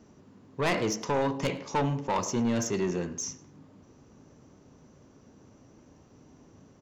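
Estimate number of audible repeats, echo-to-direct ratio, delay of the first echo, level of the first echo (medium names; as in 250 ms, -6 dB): 2, -23.5 dB, 104 ms, -24.0 dB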